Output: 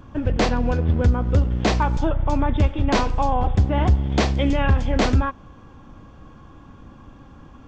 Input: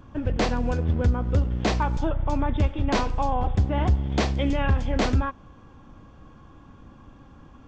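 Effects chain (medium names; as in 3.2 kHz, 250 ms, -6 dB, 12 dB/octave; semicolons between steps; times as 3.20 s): 0.49–0.94 s: low-pass 5.2 kHz 12 dB/octave; trim +4 dB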